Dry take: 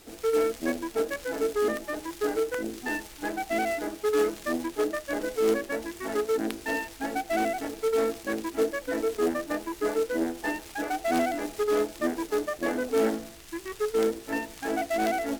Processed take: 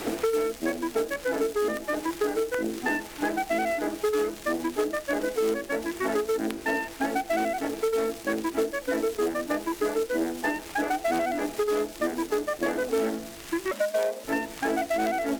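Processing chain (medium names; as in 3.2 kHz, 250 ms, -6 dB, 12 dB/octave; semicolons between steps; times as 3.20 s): 13.71–14.24 s: frequency shift +190 Hz; hum notches 50/100/150/200/250 Hz; three bands compressed up and down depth 100%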